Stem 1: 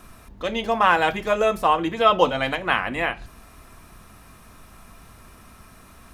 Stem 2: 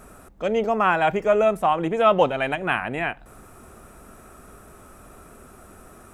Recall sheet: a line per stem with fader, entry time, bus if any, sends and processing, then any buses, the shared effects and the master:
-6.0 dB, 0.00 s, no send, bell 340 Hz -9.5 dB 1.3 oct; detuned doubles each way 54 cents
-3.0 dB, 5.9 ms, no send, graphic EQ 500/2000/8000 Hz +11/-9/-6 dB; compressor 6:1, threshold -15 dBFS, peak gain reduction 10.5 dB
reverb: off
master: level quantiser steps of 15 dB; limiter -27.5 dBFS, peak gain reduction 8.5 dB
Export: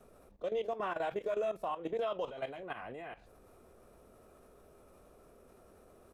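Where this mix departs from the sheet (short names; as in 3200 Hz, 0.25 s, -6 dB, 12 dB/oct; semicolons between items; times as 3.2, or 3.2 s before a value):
stem 1 -6.0 dB -> -12.0 dB; stem 2 -3.0 dB -> -11.0 dB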